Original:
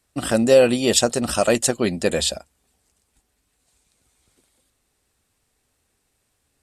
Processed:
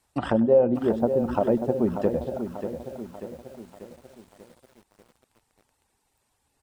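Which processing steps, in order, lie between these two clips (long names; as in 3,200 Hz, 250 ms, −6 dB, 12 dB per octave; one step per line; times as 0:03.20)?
reverb reduction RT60 0.67 s
treble cut that deepens with the level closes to 490 Hz, closed at −19 dBFS
parametric band 890 Hz +11.5 dB 0.41 octaves
on a send: repeating echo 98 ms, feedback 27%, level −18 dB
on the sum: feedback echo at a low word length 589 ms, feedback 55%, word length 8 bits, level −8.5 dB
level −1.5 dB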